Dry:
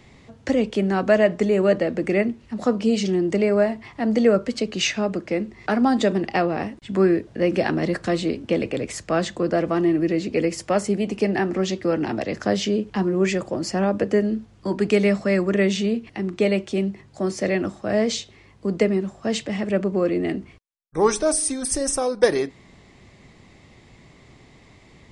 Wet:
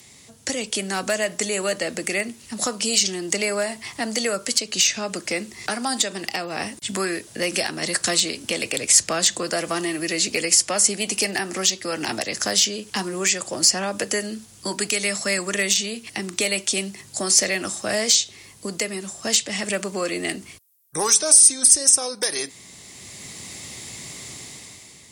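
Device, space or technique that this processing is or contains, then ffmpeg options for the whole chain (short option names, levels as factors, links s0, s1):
FM broadcast chain: -filter_complex "[0:a]highpass=78,dynaudnorm=f=130:g=11:m=3.76,acrossover=split=670|7000[s0][s1][s2];[s0]acompressor=threshold=0.0562:ratio=4[s3];[s1]acompressor=threshold=0.1:ratio=4[s4];[s2]acompressor=threshold=0.00562:ratio=4[s5];[s3][s4][s5]amix=inputs=3:normalize=0,aemphasis=mode=production:type=75fm,alimiter=limit=0.335:level=0:latency=1:release=328,asoftclip=type=hard:threshold=0.251,lowpass=f=15000:w=0.5412,lowpass=f=15000:w=1.3066,aemphasis=mode=production:type=75fm,volume=0.668"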